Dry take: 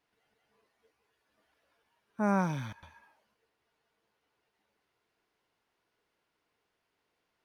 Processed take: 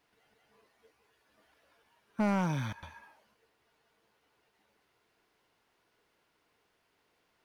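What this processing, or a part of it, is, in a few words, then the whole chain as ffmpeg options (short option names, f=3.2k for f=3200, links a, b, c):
limiter into clipper: -af "alimiter=limit=-23dB:level=0:latency=1:release=425,asoftclip=type=hard:threshold=-28dB,volume=6dB"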